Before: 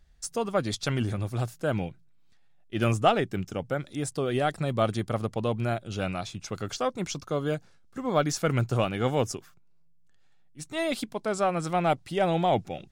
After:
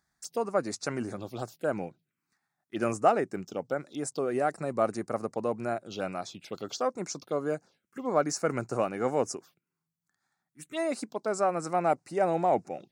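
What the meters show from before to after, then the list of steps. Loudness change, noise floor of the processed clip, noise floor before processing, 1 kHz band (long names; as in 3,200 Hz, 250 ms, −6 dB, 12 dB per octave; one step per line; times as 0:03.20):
−2.5 dB, below −85 dBFS, −56 dBFS, −1.0 dB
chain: high-pass filter 260 Hz 12 dB per octave
phaser swept by the level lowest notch 490 Hz, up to 3,300 Hz, full sweep at −30 dBFS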